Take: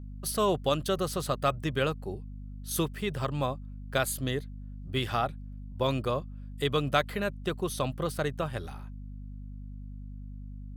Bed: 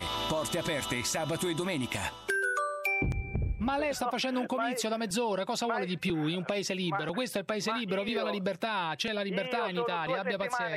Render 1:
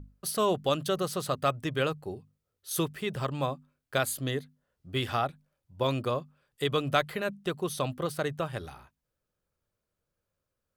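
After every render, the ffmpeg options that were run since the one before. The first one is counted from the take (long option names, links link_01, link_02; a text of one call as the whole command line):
ffmpeg -i in.wav -af "bandreject=frequency=50:width_type=h:width=6,bandreject=frequency=100:width_type=h:width=6,bandreject=frequency=150:width_type=h:width=6,bandreject=frequency=200:width_type=h:width=6,bandreject=frequency=250:width_type=h:width=6" out.wav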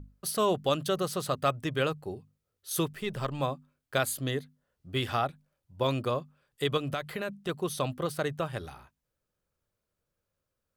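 ffmpeg -i in.wav -filter_complex "[0:a]asettb=1/sr,asplit=3[link_01][link_02][link_03];[link_01]atrim=end=2.934[link_04];[link_02]atrim=start=2.93:end=3.4,asetpts=PTS-STARTPTS,afade=type=in:duration=0.004:curve=qsin,afade=type=out:start_time=0.466:duration=0.004:curve=qsin,aeval=exprs='if(lt(val(0),0),0.708*val(0),val(0))':channel_layout=same[link_05];[link_03]atrim=start=3.396[link_06];[link_04][link_05]acrossfade=duration=0.004:curve1=hsin:curve2=qsin[link_07];[link_07][link_06]acrossfade=duration=0.004:curve1=qsin:curve2=hsin,asettb=1/sr,asplit=3[link_08][link_09][link_10];[link_08]atrim=end=6.774[link_11];[link_09]atrim=start=6.77:end=7.49,asetpts=PTS-STARTPTS,afade=type=in:duration=0.004:curve=qsin,afade=type=out:start_time=0.716:duration=0.004:curve=qsin,acompressor=threshold=-29dB:ratio=4:attack=3.2:release=140:knee=1:detection=peak[link_12];[link_10]atrim=start=7.486[link_13];[link_11][link_12]acrossfade=duration=0.004:curve1=hsin:curve2=qsin[link_14];[link_14][link_13]acrossfade=duration=0.004:curve1=qsin:curve2=hsin" out.wav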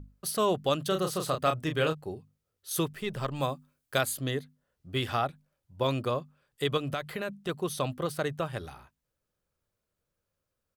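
ffmpeg -i in.wav -filter_complex "[0:a]asplit=3[link_01][link_02][link_03];[link_01]afade=type=out:start_time=0.9:duration=0.02[link_04];[link_02]asplit=2[link_05][link_06];[link_06]adelay=32,volume=-6dB[link_07];[link_05][link_07]amix=inputs=2:normalize=0,afade=type=in:start_time=0.9:duration=0.02,afade=type=out:start_time=1.93:duration=0.02[link_08];[link_03]afade=type=in:start_time=1.93:duration=0.02[link_09];[link_04][link_08][link_09]amix=inputs=3:normalize=0,asettb=1/sr,asplit=3[link_10][link_11][link_12];[link_10]atrim=end=3.364[link_13];[link_11]atrim=start=3.36:end=4.01,asetpts=PTS-STARTPTS,afade=type=in:duration=0.004:curve=qsin,afade=type=out:start_time=0.646:duration=0.004:curve=qsin,highshelf=frequency=5300:gain=9[link_14];[link_12]atrim=start=4.006[link_15];[link_13][link_14]acrossfade=duration=0.004:curve1=hsin:curve2=qsin[link_16];[link_16][link_15]acrossfade=duration=0.004:curve1=qsin:curve2=hsin" out.wav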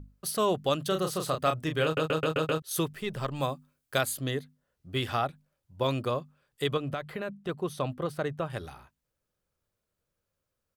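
ffmpeg -i in.wav -filter_complex "[0:a]asettb=1/sr,asplit=3[link_01][link_02][link_03];[link_01]atrim=end=6.744[link_04];[link_02]atrim=start=6.74:end=8.5,asetpts=PTS-STARTPTS,afade=type=in:duration=0.004:curve=qsin,afade=type=out:start_time=1.756:duration=0.004:curve=qsin,highshelf=frequency=3100:gain=-9.5[link_05];[link_03]atrim=start=8.496[link_06];[link_04][link_05]acrossfade=duration=0.004:curve1=hsin:curve2=qsin[link_07];[link_07][link_06]acrossfade=duration=0.004:curve1=qsin:curve2=hsin,asplit=7[link_08][link_09][link_10][link_11][link_12][link_13][link_14];[link_08]atrim=end=1.972[link_15];[link_09]atrim=start=1.838:end=1.972[link_16];[link_10]atrim=start=1.838:end=1.972[link_17];[link_11]atrim=start=1.838:end=1.972[link_18];[link_12]atrim=start=1.838:end=1.972[link_19];[link_13]atrim=start=1.838:end=1.972[link_20];[link_14]atrim=start=2.618[link_21];[link_15][link_16]acrossfade=duration=0.004:curve1=hsin:curve2=hsin[link_22];[link_22][link_17]acrossfade=duration=0.004:curve1=hsin:curve2=hsin[link_23];[link_23][link_18]acrossfade=duration=0.004:curve1=hsin:curve2=hsin[link_24];[link_24][link_19]acrossfade=duration=0.004:curve1=hsin:curve2=hsin[link_25];[link_25][link_20]acrossfade=duration=0.004:curve1=hsin:curve2=hsin[link_26];[link_26][link_21]acrossfade=duration=0.004:curve1=hsin:curve2=hsin" out.wav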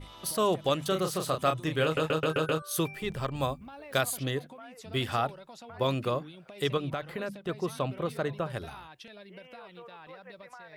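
ffmpeg -i in.wav -i bed.wav -filter_complex "[1:a]volume=-16.5dB[link_01];[0:a][link_01]amix=inputs=2:normalize=0" out.wav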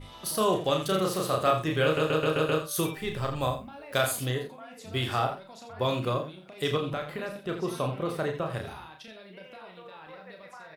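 ffmpeg -i in.wav -filter_complex "[0:a]asplit=2[link_01][link_02];[link_02]adelay=41,volume=-9.5dB[link_03];[link_01][link_03]amix=inputs=2:normalize=0,aecho=1:1:32.07|84.55:0.501|0.316" out.wav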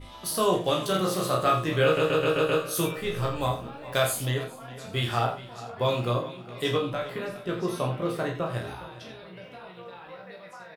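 ffmpeg -i in.wav -filter_complex "[0:a]asplit=2[link_01][link_02];[link_02]adelay=17,volume=-3.5dB[link_03];[link_01][link_03]amix=inputs=2:normalize=0,asplit=2[link_04][link_05];[link_05]adelay=412,lowpass=frequency=4800:poles=1,volume=-16dB,asplit=2[link_06][link_07];[link_07]adelay=412,lowpass=frequency=4800:poles=1,volume=0.54,asplit=2[link_08][link_09];[link_09]adelay=412,lowpass=frequency=4800:poles=1,volume=0.54,asplit=2[link_10][link_11];[link_11]adelay=412,lowpass=frequency=4800:poles=1,volume=0.54,asplit=2[link_12][link_13];[link_13]adelay=412,lowpass=frequency=4800:poles=1,volume=0.54[link_14];[link_04][link_06][link_08][link_10][link_12][link_14]amix=inputs=6:normalize=0" out.wav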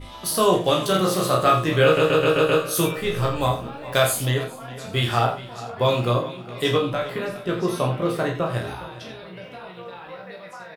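ffmpeg -i in.wav -af "volume=5.5dB" out.wav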